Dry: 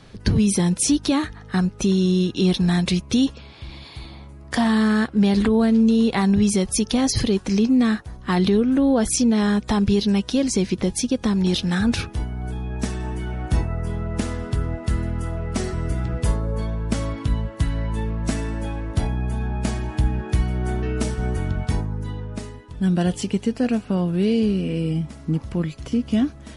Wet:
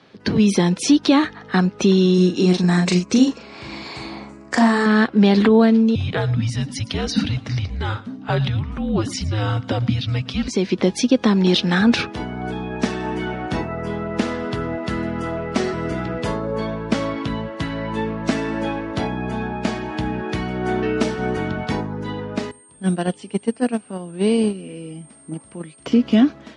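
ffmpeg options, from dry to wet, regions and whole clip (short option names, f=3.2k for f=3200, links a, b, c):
-filter_complex "[0:a]asettb=1/sr,asplit=3[a][b][c];[a]atrim=end=2.144[d];[b]atrim=start=2.14:end=4.86,asetpts=PTS-STARTPTS,afade=t=in:d=0.004:c=qsin,afade=t=out:st=2.716:d=0.004:c=qsin,lowpass=f=7.9k:t=q:w=5,equalizer=f=3.4k:t=o:w=0.44:g=-11.5,asplit=2[e][f];[f]adelay=39,volume=-4.5dB[g];[e][g]amix=inputs=2:normalize=0,atrim=end_sample=119952[h];[c]atrim=start=4.856[i];[d][h]acrossfade=d=0.004:c1=hsin:c2=qsin[j];[j][i]acrossfade=d=0.004:c1=qsin:c2=hsin,asettb=1/sr,asplit=3[k][l][m];[k]atrim=end=5.954[n];[l]atrim=start=5.95:end=10.48,asetpts=PTS-STARTPTS,afade=t=in:d=0.004:c=qsin,afade=t=out:st=4.526:d=0.004:c=qsin,equalizer=f=200:w=0.43:g=8.5,afreqshift=-320,aecho=1:1:113:0.106,atrim=end_sample=199773[o];[m]atrim=start=10.476[p];[n][o]acrossfade=d=0.004:c1=hsin:c2=qsin[q];[q][p]acrossfade=d=0.004:c1=qsin:c2=hsin,asettb=1/sr,asplit=3[r][s][t];[r]atrim=end=22.514[u];[s]atrim=start=22.51:end=25.86,asetpts=PTS-STARTPTS,afade=t=in:d=0.004:c=qsin,afade=t=out:st=3.346:d=0.004:c=qsin,aeval=exprs='val(0)+0.0501*sin(2*PI*8600*n/s)':c=same,agate=range=-17dB:threshold=-18dB:ratio=16:release=100:detection=peak[v];[t]atrim=start=25.856[w];[u][v]acrossfade=d=0.004:c1=hsin:c2=qsin[x];[x][w]acrossfade=d=0.004:c1=qsin:c2=hsin,dynaudnorm=f=100:g=5:m=11.5dB,highpass=55,acrossover=split=180 5400:gain=0.112 1 0.0891[y][z][aa];[y][z][aa]amix=inputs=3:normalize=0,volume=-1dB"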